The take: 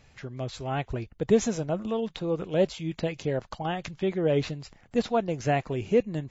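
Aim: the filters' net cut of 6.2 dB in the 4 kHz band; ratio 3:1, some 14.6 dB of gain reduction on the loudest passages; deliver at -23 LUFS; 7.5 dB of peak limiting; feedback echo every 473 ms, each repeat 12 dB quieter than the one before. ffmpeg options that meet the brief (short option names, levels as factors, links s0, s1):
-af "equalizer=f=4000:t=o:g=-8.5,acompressor=threshold=0.0141:ratio=3,alimiter=level_in=2.66:limit=0.0631:level=0:latency=1,volume=0.376,aecho=1:1:473|946|1419:0.251|0.0628|0.0157,volume=8.91"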